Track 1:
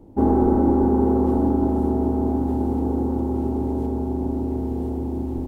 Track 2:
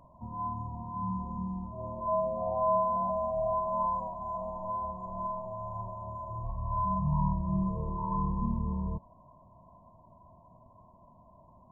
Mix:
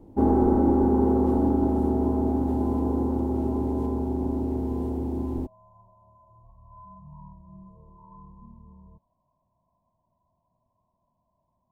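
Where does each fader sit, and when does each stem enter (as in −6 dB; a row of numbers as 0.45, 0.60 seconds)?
−2.5, −17.5 decibels; 0.00, 0.00 seconds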